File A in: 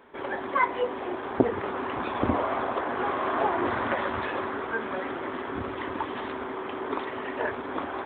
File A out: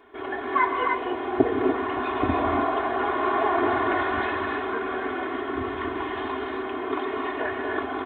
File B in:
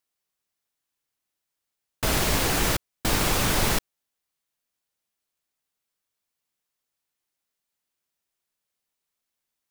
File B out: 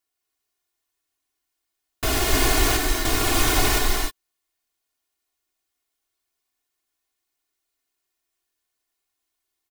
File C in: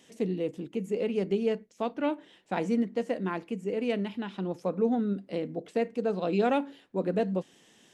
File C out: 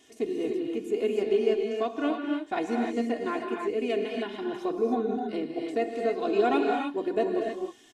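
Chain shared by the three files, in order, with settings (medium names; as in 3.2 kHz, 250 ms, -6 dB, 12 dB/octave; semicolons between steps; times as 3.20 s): comb 2.8 ms, depth 93%; gated-style reverb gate 330 ms rising, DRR 1 dB; trim -2 dB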